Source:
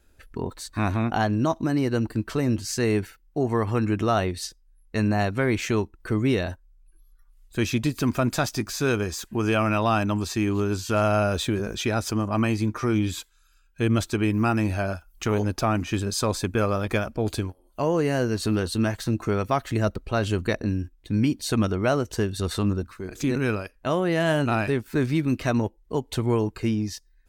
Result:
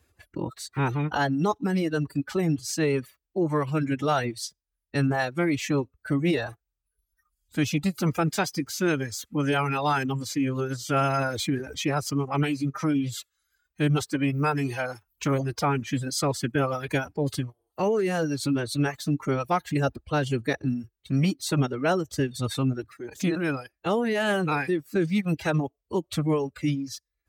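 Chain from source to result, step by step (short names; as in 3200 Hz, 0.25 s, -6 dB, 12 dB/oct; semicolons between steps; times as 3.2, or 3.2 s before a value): formant-preserving pitch shift +4.5 st; HPF 65 Hz 24 dB/oct; reverb removal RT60 1.2 s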